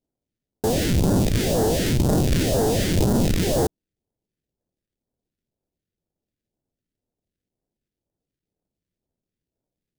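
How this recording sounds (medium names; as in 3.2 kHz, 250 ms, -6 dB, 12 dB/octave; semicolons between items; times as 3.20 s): aliases and images of a low sample rate 1.2 kHz, jitter 20%; phasing stages 2, 2 Hz, lowest notch 800–2300 Hz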